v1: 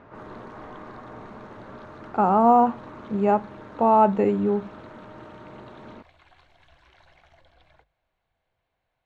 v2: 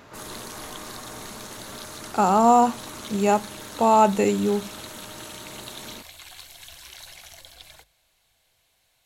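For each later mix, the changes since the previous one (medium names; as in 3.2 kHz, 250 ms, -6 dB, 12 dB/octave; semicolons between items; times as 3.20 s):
background +4.5 dB; master: remove low-pass 1.5 kHz 12 dB/octave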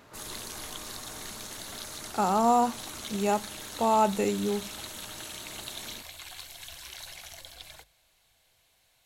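speech -6.5 dB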